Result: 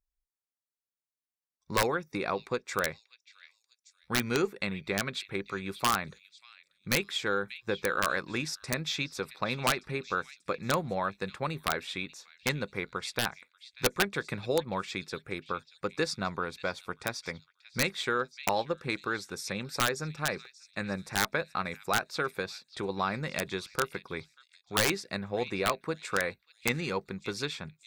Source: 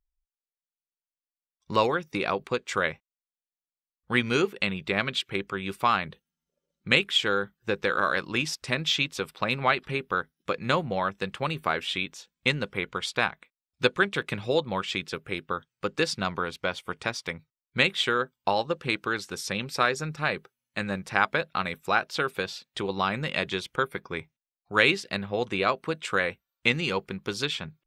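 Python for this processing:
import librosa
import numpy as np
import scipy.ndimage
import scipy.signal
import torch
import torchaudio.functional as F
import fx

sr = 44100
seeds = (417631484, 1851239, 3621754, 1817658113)

p1 = fx.peak_eq(x, sr, hz=3000.0, db=-14.0, octaves=0.27)
p2 = fx.cheby_harmonics(p1, sr, harmonics=(4,), levels_db=(-35,), full_scale_db=-6.0)
p3 = p2 + fx.echo_stepped(p2, sr, ms=587, hz=3400.0, octaves=0.7, feedback_pct=70, wet_db=-12.0, dry=0)
p4 = (np.mod(10.0 ** (12.5 / 20.0) * p3 + 1.0, 2.0) - 1.0) / 10.0 ** (12.5 / 20.0)
y = p4 * librosa.db_to_amplitude(-3.5)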